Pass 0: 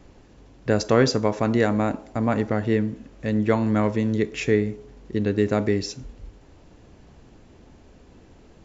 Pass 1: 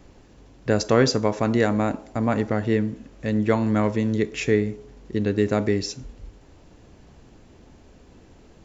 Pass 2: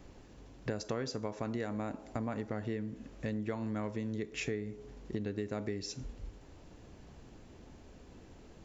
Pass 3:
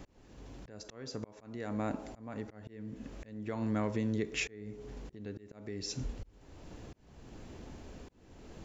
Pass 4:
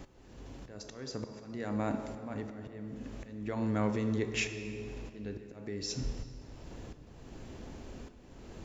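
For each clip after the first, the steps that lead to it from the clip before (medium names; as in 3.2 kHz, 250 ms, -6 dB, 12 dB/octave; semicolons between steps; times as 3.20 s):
treble shelf 6.3 kHz +4 dB
compression 6:1, threshold -30 dBFS, peak gain reduction 16.5 dB; trim -4 dB
in parallel at -3 dB: peak limiter -32 dBFS, peak gain reduction 9.5 dB; on the sum: slow attack 494 ms; trim +1 dB
reverberation RT60 2.7 s, pre-delay 5 ms, DRR 8 dB; trim +1.5 dB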